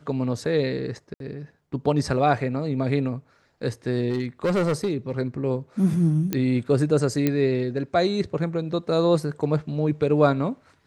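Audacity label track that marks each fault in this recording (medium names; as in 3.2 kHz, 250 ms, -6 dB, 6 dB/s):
1.140000	1.200000	dropout 62 ms
4.100000	5.120000	clipped -18.5 dBFS
6.330000	6.330000	pop -10 dBFS
7.270000	7.270000	pop -9 dBFS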